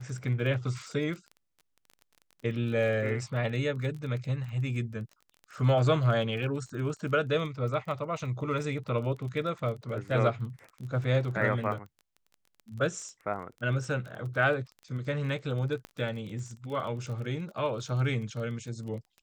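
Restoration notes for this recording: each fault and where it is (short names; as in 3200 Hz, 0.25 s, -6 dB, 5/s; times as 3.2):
crackle 24/s -38 dBFS
15.85 pop -26 dBFS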